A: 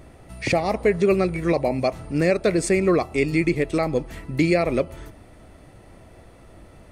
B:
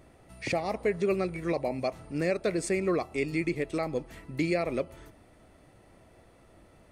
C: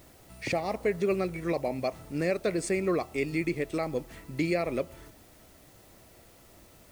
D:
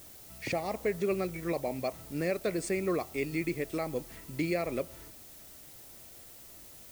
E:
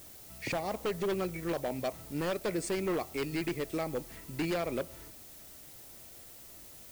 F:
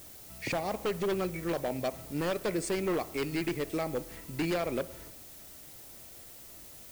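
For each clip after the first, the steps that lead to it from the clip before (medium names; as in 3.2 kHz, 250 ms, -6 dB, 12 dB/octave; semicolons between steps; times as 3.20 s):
bass shelf 120 Hz -6 dB; trim -8 dB
word length cut 10-bit, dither triangular
added noise blue -49 dBFS; trim -3 dB
wavefolder -26 dBFS
reverberation RT60 1.1 s, pre-delay 54 ms, DRR 18 dB; trim +1.5 dB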